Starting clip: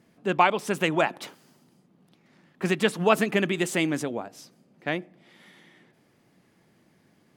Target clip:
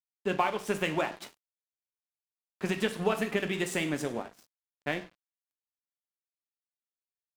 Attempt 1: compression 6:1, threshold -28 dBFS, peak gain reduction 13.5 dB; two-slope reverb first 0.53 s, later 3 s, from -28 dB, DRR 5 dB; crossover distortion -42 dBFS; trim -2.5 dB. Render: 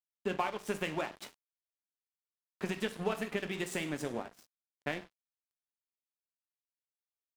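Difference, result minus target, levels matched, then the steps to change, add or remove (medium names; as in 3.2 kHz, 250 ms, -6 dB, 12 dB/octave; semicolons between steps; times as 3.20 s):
compression: peak gain reduction +5.5 dB
change: compression 6:1, threshold -21.5 dBFS, peak gain reduction 8 dB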